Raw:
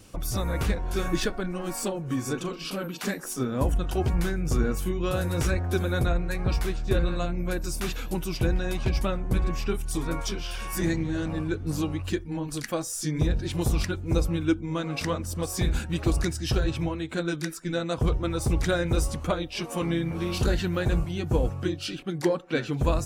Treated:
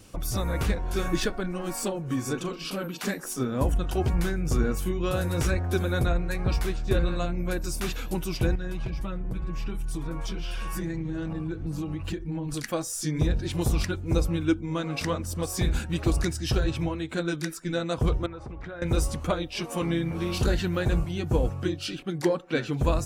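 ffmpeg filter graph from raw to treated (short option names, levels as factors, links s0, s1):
-filter_complex "[0:a]asettb=1/sr,asplit=3[s0][s1][s2];[s0]atrim=end=8.554[s3];[s1]atrim=start=8.55:end=12.54,asetpts=PTS-STARTPTS,afade=t=in:d=0.004:c=qsin,afade=t=out:st=3.986:d=0.004:c=qsin,bass=f=250:g=4,treble=f=4000:g=-5,aecho=1:1:6.1:0.54,atrim=end_sample=175959,acompressor=threshold=0.0447:ratio=10:attack=3.2:release=140:knee=1:detection=peak[s4];[s2]atrim=start=12.536[s5];[s3][s4]acrossfade=d=0.004:c1=hsin:c2=qsin[s6];[s6][s5]acrossfade=d=0.004:c1=qsin:c2=hsin,asettb=1/sr,asplit=3[s7][s8][s9];[s7]atrim=end=18.264[s10];[s8]atrim=start=18.26:end=18.82,asetpts=PTS-STARTPTS,afade=t=in:d=0.004:c=qsin,afade=t=out:st=0.556:d=0.004:c=qsin,lowpass=1700,lowshelf=f=480:g=-8.5,acompressor=threshold=0.02:ratio=12:attack=3.2:release=140:knee=1:detection=peak[s11];[s9]atrim=start=18.816[s12];[s10][s11]acrossfade=d=0.004:c1=hsin:c2=qsin[s13];[s13][s12]acrossfade=d=0.004:c1=qsin:c2=hsin"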